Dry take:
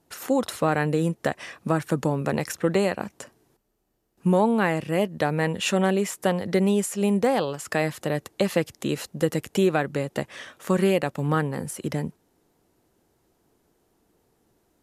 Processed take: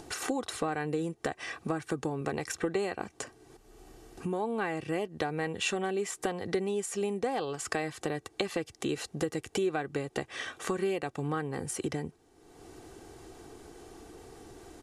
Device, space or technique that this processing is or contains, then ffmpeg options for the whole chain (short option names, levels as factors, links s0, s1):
upward and downward compression: -af "lowpass=f=10000:w=0.5412,lowpass=f=10000:w=1.3066,acompressor=mode=upward:threshold=0.01:ratio=2.5,acompressor=threshold=0.0224:ratio=4,aecho=1:1:2.6:0.5,volume=1.33"